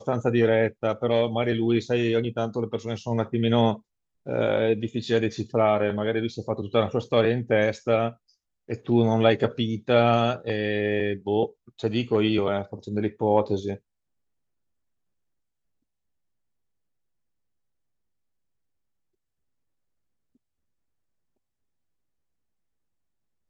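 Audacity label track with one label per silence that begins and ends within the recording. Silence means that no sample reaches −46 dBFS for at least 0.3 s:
3.790000	4.260000	silence
8.140000	8.690000	silence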